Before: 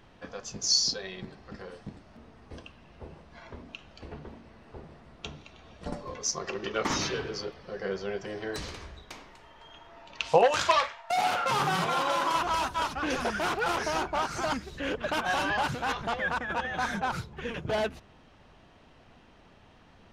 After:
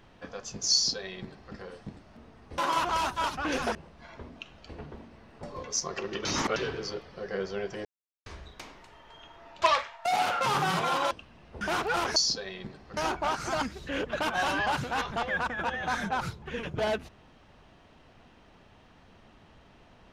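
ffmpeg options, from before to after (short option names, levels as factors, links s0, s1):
-filter_complex "[0:a]asplit=13[s0][s1][s2][s3][s4][s5][s6][s7][s8][s9][s10][s11][s12];[s0]atrim=end=2.582[s13];[s1]atrim=start=12.158:end=13.332[s14];[s2]atrim=start=3.078:end=4.762[s15];[s3]atrim=start=5.938:end=6.762[s16];[s4]atrim=start=6.758:end=7.072,asetpts=PTS-STARTPTS,areverse[s17];[s5]atrim=start=7.068:end=8.36,asetpts=PTS-STARTPTS,afade=t=out:st=1.288:d=0.004:c=hsin[s18];[s6]atrim=start=8.36:end=8.77,asetpts=PTS-STARTPTS,volume=0[s19];[s7]atrim=start=8.77:end=10.132,asetpts=PTS-STARTPTS,afade=t=in:d=0.004:c=hsin[s20];[s8]atrim=start=10.668:end=12.162[s21];[s9]atrim=start=2.578:end=3.082[s22];[s10]atrim=start=13.328:end=13.882[s23];[s11]atrim=start=0.738:end=1.552[s24];[s12]atrim=start=13.878[s25];[s13][s14]acrossfade=d=0.004:c1=hsin:c2=hsin[s26];[s26][s15]acrossfade=d=0.004:c1=hsin:c2=hsin[s27];[s27][s16]acrossfade=d=0.004:c1=hsin:c2=hsin[s28];[s28][s17]acrossfade=d=0.004:c1=hsin:c2=hsin[s29];[s18][s19][s20]concat=n=3:v=0:a=1[s30];[s29][s30]acrossfade=d=0.004:c1=hsin:c2=hsin[s31];[s31][s21]acrossfade=d=0.004:c1=hsin:c2=hsin[s32];[s32][s22]acrossfade=d=0.004:c1=hsin:c2=hsin[s33];[s33][s23]acrossfade=d=0.004:c1=hsin:c2=hsin[s34];[s34][s24]acrossfade=d=0.004:c1=hsin:c2=hsin[s35];[s35][s25]acrossfade=d=0.004:c1=hsin:c2=hsin"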